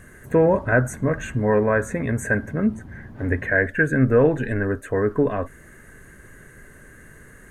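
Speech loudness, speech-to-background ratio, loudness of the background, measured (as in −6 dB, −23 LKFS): −21.5 LKFS, 19.5 dB, −41.0 LKFS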